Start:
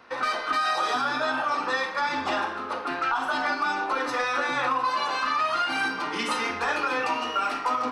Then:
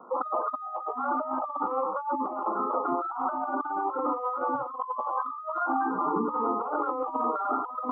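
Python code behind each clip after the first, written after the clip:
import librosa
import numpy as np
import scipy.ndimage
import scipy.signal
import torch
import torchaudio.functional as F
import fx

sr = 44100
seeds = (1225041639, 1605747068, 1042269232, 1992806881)

y = scipy.signal.sosfilt(scipy.signal.cheby1(5, 1.0, [120.0, 1300.0], 'bandpass', fs=sr, output='sos'), x)
y = fx.spec_gate(y, sr, threshold_db=-15, keep='strong')
y = fx.over_compress(y, sr, threshold_db=-32.0, ratio=-0.5)
y = y * librosa.db_to_amplitude(3.0)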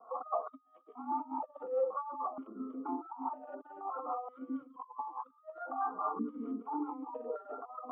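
y = x + 0.41 * np.pad(x, (int(4.4 * sr / 1000.0), 0))[:len(x)]
y = fx.harmonic_tremolo(y, sr, hz=4.7, depth_pct=70, crossover_hz=410.0)
y = fx.vowel_held(y, sr, hz=2.1)
y = y * librosa.db_to_amplitude(4.5)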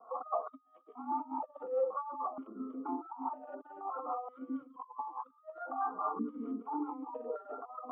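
y = x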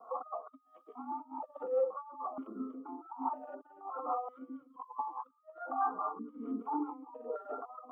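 y = x * (1.0 - 0.72 / 2.0 + 0.72 / 2.0 * np.cos(2.0 * np.pi * 1.2 * (np.arange(len(x)) / sr)))
y = y * librosa.db_to_amplitude(3.0)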